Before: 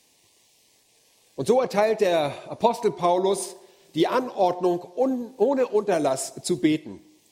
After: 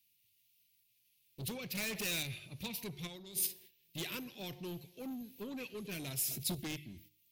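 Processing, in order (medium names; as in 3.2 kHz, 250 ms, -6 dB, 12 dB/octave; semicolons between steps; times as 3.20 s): gate -49 dBFS, range -13 dB; FFT filter 130 Hz 0 dB, 660 Hz -30 dB, 970 Hz -29 dB, 2.6 kHz -5 dB, 8.2 kHz -24 dB, 13 kHz -5 dB; saturation -38 dBFS, distortion -9 dB; 1.75–2.23 s: waveshaping leveller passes 2; 3.07–3.47 s: compressor with a negative ratio -50 dBFS, ratio -1; pre-emphasis filter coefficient 0.8; hum notches 50/100/150 Hz; 5.68–6.55 s: decay stretcher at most 56 dB/s; trim +13.5 dB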